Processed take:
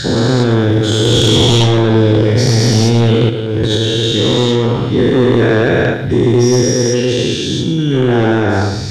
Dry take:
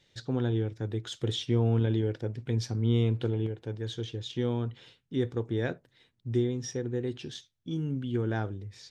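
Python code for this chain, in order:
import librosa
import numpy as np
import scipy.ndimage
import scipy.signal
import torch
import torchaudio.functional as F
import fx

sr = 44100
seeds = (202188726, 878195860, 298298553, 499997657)

y = fx.spec_dilate(x, sr, span_ms=480)
y = fx.over_compress(y, sr, threshold_db=-29.0, ratio=-0.5, at=(3.29, 3.77))
y = fx.echo_feedback(y, sr, ms=111, feedback_pct=35, wet_db=-10.0)
y = fx.fold_sine(y, sr, drive_db=6, ceiling_db=-9.0)
y = y * librosa.db_to_amplitude(4.5)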